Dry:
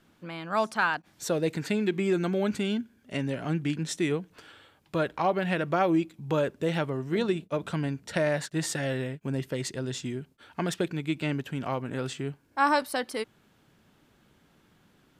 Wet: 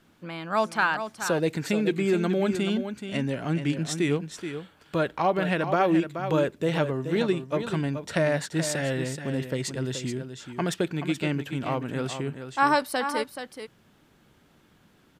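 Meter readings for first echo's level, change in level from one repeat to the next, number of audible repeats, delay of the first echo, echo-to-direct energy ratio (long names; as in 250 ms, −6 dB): −9.0 dB, repeats not evenly spaced, 1, 428 ms, −9.0 dB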